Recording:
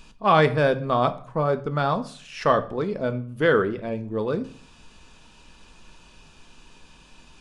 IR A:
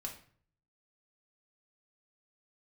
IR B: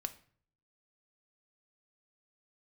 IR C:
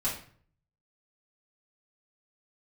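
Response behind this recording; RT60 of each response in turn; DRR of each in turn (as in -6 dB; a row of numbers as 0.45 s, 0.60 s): B; 0.50 s, 0.50 s, 0.50 s; -0.5 dB, 9.0 dB, -9.5 dB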